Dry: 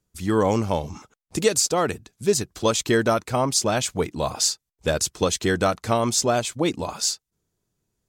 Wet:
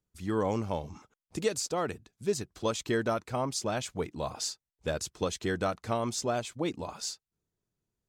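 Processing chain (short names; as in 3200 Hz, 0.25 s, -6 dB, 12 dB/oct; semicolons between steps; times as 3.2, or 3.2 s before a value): high shelf 5100 Hz -6.5 dB; gain -9 dB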